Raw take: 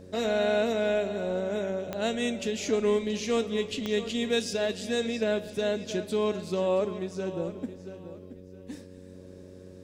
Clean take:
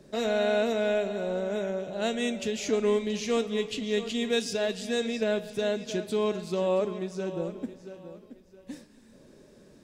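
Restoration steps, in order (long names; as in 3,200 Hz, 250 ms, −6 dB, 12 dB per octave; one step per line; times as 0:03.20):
click removal
hum removal 92.2 Hz, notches 6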